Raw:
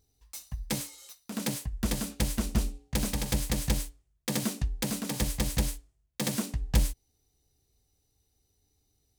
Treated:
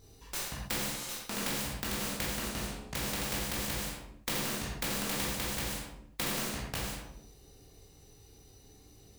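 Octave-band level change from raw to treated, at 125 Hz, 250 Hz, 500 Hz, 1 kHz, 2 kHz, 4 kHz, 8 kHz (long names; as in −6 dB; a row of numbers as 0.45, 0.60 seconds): −8.5, −6.5, −1.5, +2.5, +3.5, +1.0, −1.5 decibels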